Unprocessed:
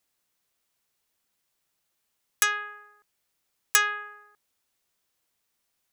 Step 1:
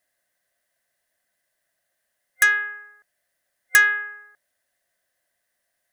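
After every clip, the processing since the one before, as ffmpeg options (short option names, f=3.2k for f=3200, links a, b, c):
-af "superequalizer=8b=3.98:11b=3.98:16b=1.58,volume=-1.5dB"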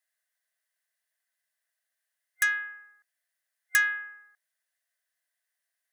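-af "highpass=1.1k,volume=-7.5dB"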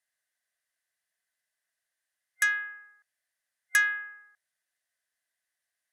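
-af "lowpass=12k"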